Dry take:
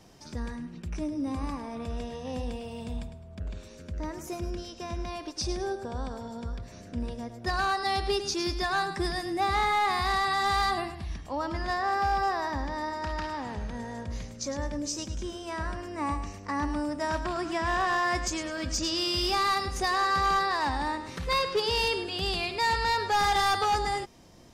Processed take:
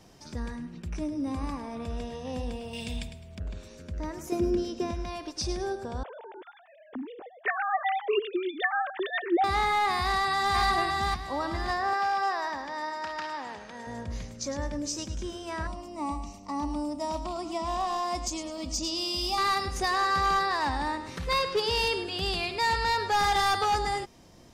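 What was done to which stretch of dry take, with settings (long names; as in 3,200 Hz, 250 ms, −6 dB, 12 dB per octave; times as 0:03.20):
0:02.73–0:03.38: high shelf with overshoot 1,700 Hz +9.5 dB, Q 1.5
0:04.32–0:04.91: hollow resonant body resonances 260/370 Hz, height 12 dB, ringing for 30 ms
0:06.03–0:09.44: three sine waves on the formant tracks
0:09.97–0:10.57: delay throw 570 ms, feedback 30%, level −2.5 dB
0:11.93–0:13.87: meter weighting curve A
0:15.67–0:19.38: phaser with its sweep stopped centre 440 Hz, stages 6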